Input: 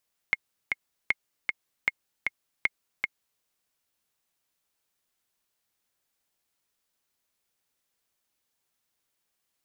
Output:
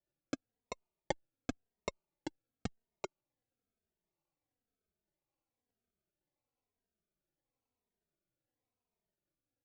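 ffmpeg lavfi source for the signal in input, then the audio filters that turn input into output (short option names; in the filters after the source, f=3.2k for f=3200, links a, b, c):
-f lavfi -i "aevalsrc='pow(10,(-9.5-3.5*gte(mod(t,2*60/155),60/155))/20)*sin(2*PI*2150*mod(t,60/155))*exp(-6.91*mod(t,60/155)/0.03)':d=3.09:s=44100"
-filter_complex "[0:a]lowpass=1.5k,aresample=16000,acrusher=samples=13:mix=1:aa=0.000001:lfo=1:lforange=7.8:lforate=0.88,aresample=44100,asplit=2[a][b];[b]adelay=2.9,afreqshift=-0.98[c];[a][c]amix=inputs=2:normalize=1"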